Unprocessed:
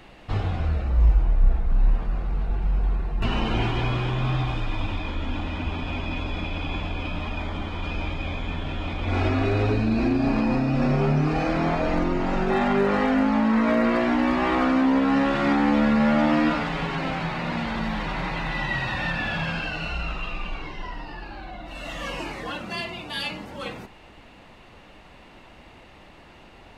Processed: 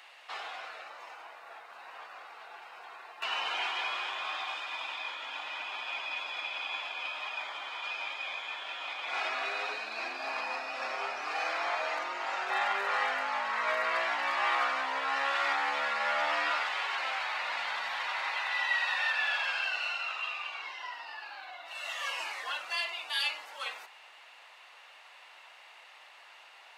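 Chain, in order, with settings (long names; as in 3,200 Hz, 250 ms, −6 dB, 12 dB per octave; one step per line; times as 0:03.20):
Bessel high-pass filter 1,100 Hz, order 4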